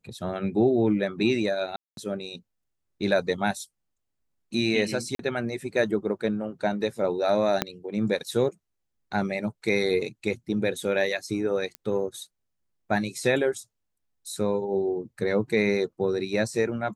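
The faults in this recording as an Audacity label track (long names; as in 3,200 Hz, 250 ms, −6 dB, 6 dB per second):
1.760000	1.970000	drop-out 212 ms
5.150000	5.190000	drop-out 43 ms
7.620000	7.620000	click −7 dBFS
11.750000	11.750000	click −19 dBFS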